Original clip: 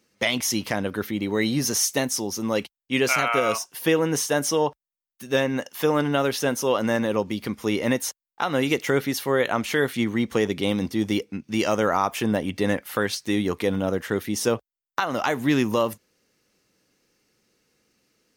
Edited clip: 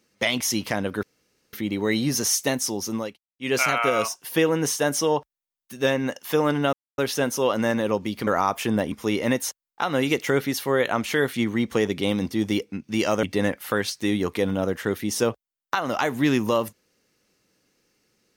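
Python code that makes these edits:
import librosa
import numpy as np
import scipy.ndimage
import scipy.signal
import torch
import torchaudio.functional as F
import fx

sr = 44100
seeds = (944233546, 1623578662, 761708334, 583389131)

y = fx.edit(x, sr, fx.insert_room_tone(at_s=1.03, length_s=0.5),
    fx.fade_down_up(start_s=2.45, length_s=0.6, db=-22.0, fade_s=0.26, curve='qua'),
    fx.insert_silence(at_s=6.23, length_s=0.25),
    fx.move(start_s=11.83, length_s=0.65, to_s=7.52), tone=tone)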